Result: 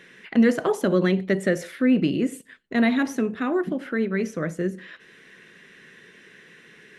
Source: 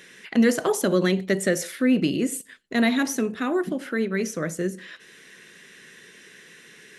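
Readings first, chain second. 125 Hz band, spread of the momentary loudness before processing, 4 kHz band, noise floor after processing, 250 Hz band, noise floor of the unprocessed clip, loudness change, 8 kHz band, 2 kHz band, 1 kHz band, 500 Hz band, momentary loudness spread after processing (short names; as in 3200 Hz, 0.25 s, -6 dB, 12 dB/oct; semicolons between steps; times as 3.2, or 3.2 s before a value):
+1.5 dB, 8 LU, -4.5 dB, -52 dBFS, +1.0 dB, -50 dBFS, +0.5 dB, -11.0 dB, -0.5 dB, 0.0 dB, 0.0 dB, 8 LU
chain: tone controls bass +2 dB, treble -12 dB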